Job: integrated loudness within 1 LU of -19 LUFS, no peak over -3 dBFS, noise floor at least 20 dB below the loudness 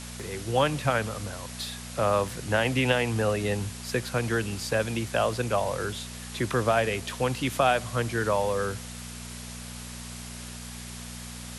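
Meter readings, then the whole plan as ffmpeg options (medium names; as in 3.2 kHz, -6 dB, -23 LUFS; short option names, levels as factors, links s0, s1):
hum 60 Hz; highest harmonic 240 Hz; hum level -39 dBFS; noise floor -40 dBFS; noise floor target -48 dBFS; loudness -27.5 LUFS; peak level -9.0 dBFS; loudness target -19.0 LUFS
-> -af "bandreject=f=60:t=h:w=4,bandreject=f=120:t=h:w=4,bandreject=f=180:t=h:w=4,bandreject=f=240:t=h:w=4"
-af "afftdn=nr=8:nf=-40"
-af "volume=2.66,alimiter=limit=0.708:level=0:latency=1"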